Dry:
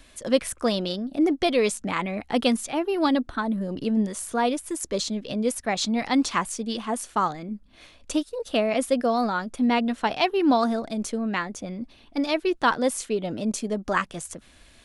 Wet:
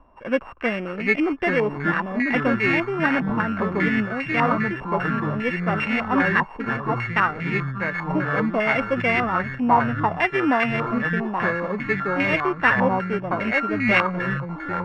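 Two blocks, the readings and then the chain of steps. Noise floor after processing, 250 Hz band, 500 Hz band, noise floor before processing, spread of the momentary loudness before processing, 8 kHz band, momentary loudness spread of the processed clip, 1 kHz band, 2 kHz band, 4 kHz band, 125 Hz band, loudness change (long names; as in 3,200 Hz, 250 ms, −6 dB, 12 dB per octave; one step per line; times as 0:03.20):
−36 dBFS, +1.0 dB, +1.0 dB, −54 dBFS, 7 LU, below −20 dB, 6 LU, +4.0 dB, +11.5 dB, −5.0 dB, +10.5 dB, +3.5 dB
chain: samples sorted by size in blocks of 16 samples
delay with pitch and tempo change per echo 666 ms, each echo −4 semitones, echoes 3
low-pass on a step sequencer 5 Hz 960–2,200 Hz
level −1.5 dB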